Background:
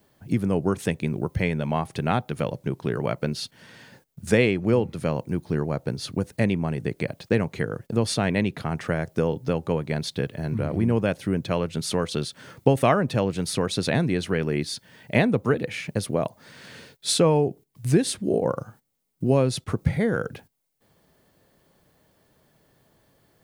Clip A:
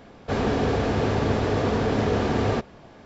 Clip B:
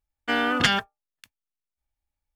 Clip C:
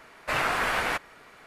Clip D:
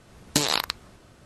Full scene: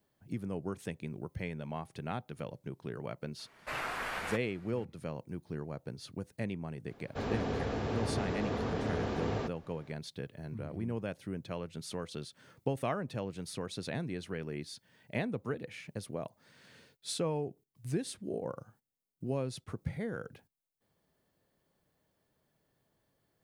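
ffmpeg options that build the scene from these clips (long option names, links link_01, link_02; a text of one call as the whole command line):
ffmpeg -i bed.wav -i cue0.wav -i cue1.wav -i cue2.wav -filter_complex "[0:a]volume=-14.5dB[link_01];[3:a]atrim=end=1.46,asetpts=PTS-STARTPTS,volume=-11dB,afade=type=in:duration=0.004:curve=hsin,afade=type=out:start_time=1.456:duration=0.004:curve=hsin,adelay=3390[link_02];[1:a]atrim=end=3.05,asetpts=PTS-STARTPTS,volume=-11.5dB,afade=type=in:duration=0.004:curve=hsin,afade=type=out:start_time=3.046:duration=0.004:curve=hsin,adelay=6870[link_03];[link_01][link_02][link_03]amix=inputs=3:normalize=0" out.wav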